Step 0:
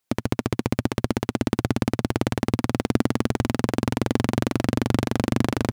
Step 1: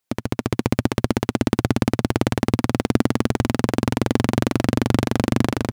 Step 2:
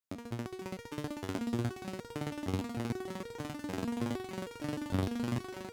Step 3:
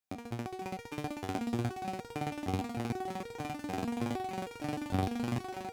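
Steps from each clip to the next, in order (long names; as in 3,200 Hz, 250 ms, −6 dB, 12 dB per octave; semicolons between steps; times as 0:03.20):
automatic gain control; level −1 dB
echo with a time of its own for lows and highs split 310 Hz, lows 128 ms, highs 386 ms, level −15 dB; step-sequenced resonator 6.5 Hz 94–470 Hz; level −4.5 dB
hollow resonant body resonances 760/2,400 Hz, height 15 dB, ringing for 90 ms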